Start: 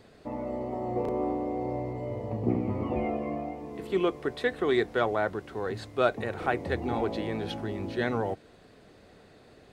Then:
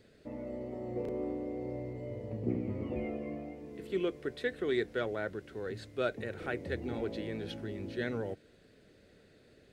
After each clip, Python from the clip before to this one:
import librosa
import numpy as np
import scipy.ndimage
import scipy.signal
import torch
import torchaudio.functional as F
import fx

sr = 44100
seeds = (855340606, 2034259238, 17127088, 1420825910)

y = fx.band_shelf(x, sr, hz=920.0, db=-10.0, octaves=1.0)
y = y * librosa.db_to_amplitude(-6.0)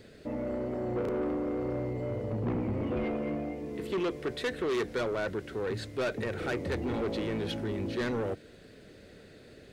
y = 10.0 ** (-36.0 / 20.0) * np.tanh(x / 10.0 ** (-36.0 / 20.0))
y = y * librosa.db_to_amplitude(9.0)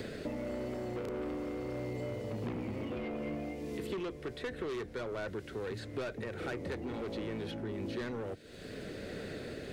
y = x * (1.0 - 0.28 / 2.0 + 0.28 / 2.0 * np.cos(2.0 * np.pi * 1.5 * (np.arange(len(x)) / sr)))
y = fx.band_squash(y, sr, depth_pct=100)
y = y * librosa.db_to_amplitude(-5.5)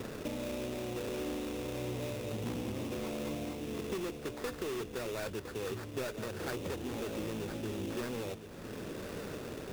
y = fx.sample_hold(x, sr, seeds[0], rate_hz=3100.0, jitter_pct=20)
y = y + 10.0 ** (-11.0 / 20.0) * np.pad(y, (int(1011 * sr / 1000.0), 0))[:len(y)]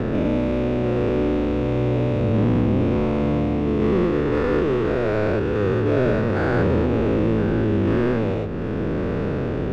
y = fx.spec_dilate(x, sr, span_ms=240)
y = scipy.signal.sosfilt(scipy.signal.butter(2, 2100.0, 'lowpass', fs=sr, output='sos'), y)
y = fx.low_shelf(y, sr, hz=320.0, db=9.0)
y = y * librosa.db_to_amplitude(8.5)